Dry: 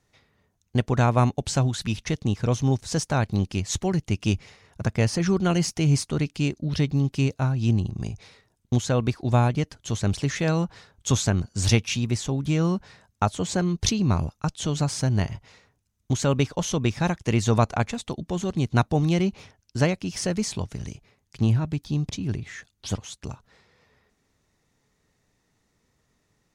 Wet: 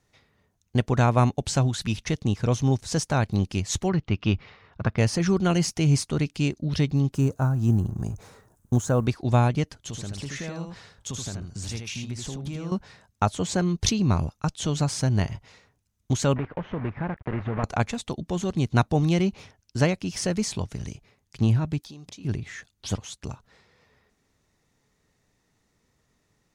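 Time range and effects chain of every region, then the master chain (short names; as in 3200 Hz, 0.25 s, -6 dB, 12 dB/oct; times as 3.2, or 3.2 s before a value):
3.89–4.98 LPF 4100 Hz 24 dB/oct + bell 1200 Hz +6.5 dB 0.6 oct
7.14–9.06 G.711 law mismatch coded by mu + band shelf 3200 Hz -12.5 dB
9.78–12.72 compressor 4:1, threshold -32 dBFS + echo 79 ms -4.5 dB
16.36–17.64 block floating point 3-bit + LPF 2000 Hz 24 dB/oct + compressor 2.5:1, threshold -27 dBFS
21.8–22.25 tone controls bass -13 dB, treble +3 dB + notches 60/120/180 Hz + compressor 5:1, threshold -40 dBFS
whole clip: dry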